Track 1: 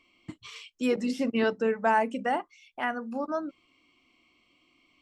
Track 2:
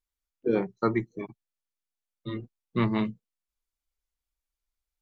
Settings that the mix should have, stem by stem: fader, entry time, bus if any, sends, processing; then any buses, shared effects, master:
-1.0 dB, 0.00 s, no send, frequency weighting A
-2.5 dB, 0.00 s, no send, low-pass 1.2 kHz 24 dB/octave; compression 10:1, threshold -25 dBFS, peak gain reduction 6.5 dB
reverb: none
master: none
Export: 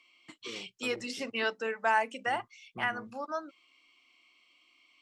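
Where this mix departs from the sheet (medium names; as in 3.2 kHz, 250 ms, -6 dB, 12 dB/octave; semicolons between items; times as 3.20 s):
stem 2 -2.5 dB -> -13.0 dB; master: extra tilt shelf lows -4 dB, about 1.4 kHz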